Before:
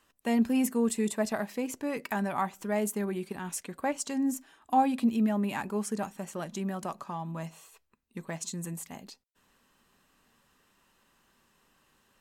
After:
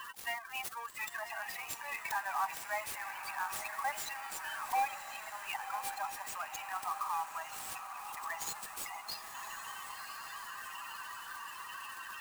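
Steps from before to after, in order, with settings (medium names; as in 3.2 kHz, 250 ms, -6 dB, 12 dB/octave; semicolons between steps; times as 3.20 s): jump at every zero crossing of -33 dBFS; steep high-pass 830 Hz 36 dB/octave; peaking EQ 11 kHz +7 dB 0.65 oct; 0.89–1.42 s: compressor with a negative ratio -38 dBFS, ratio -0.5; 4.87–5.69 s: slow attack 138 ms; hard clipper -30 dBFS, distortion -10 dB; loudest bins only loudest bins 16; echo that smears into a reverb 1067 ms, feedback 56%, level -8 dB; sampling jitter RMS 0.021 ms; trim +1.5 dB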